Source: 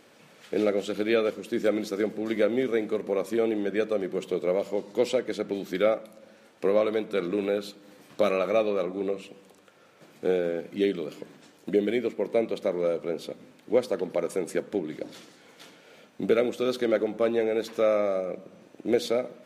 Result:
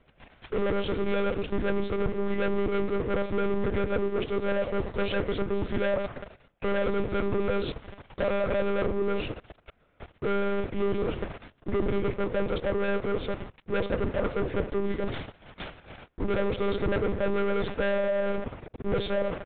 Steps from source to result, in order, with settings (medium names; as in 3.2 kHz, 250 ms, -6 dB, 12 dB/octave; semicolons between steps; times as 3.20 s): waveshaping leveller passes 5; reverse; compression 8:1, threshold -25 dBFS, peak gain reduction 12.5 dB; reverse; saturation -22.5 dBFS, distortion -22 dB; monotone LPC vocoder at 8 kHz 200 Hz; distance through air 240 m; trim +2 dB